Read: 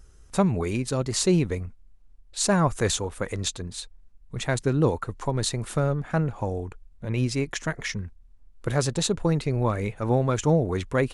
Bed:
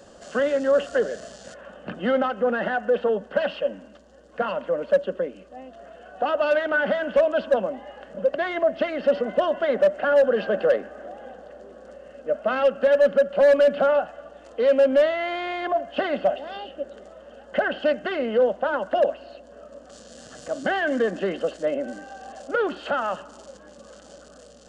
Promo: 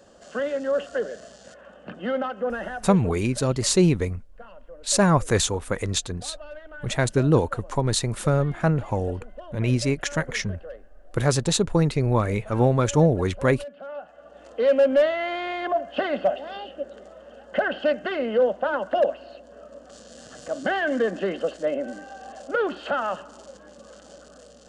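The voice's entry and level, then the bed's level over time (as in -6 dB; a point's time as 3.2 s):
2.50 s, +3.0 dB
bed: 2.53 s -4.5 dB
3.37 s -20 dB
13.81 s -20 dB
14.41 s -0.5 dB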